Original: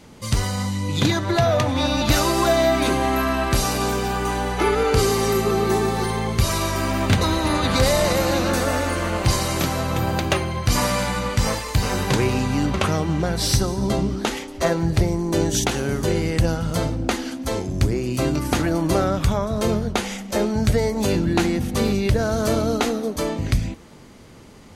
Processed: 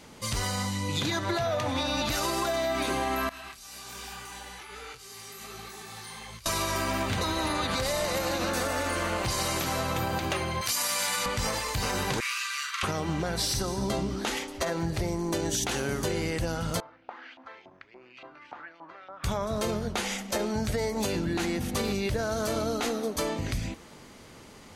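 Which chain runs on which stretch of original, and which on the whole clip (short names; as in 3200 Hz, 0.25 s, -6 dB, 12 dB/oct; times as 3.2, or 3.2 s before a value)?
3.29–6.46 passive tone stack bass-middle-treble 5-5-5 + negative-ratio compressor -38 dBFS + detuned doubles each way 45 cents
10.61–11.26 HPF 73 Hz + tilt +3.5 dB/oct
12.2–12.83 steep high-pass 1100 Hz 96 dB/oct + doubler 44 ms -4 dB
16.8–19.24 compressor 12:1, threshold -25 dBFS + LFO band-pass saw up 3.5 Hz 840–3100 Hz + air absorption 210 m
whole clip: low shelf 420 Hz -7.5 dB; limiter -15.5 dBFS; compressor, threshold -25 dBFS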